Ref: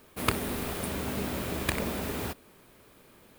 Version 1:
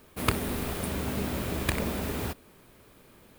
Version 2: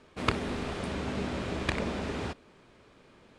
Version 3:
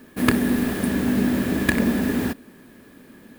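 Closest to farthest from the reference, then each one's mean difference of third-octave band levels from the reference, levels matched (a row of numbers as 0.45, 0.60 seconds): 1, 2, 3; 1.0, 4.5, 6.0 decibels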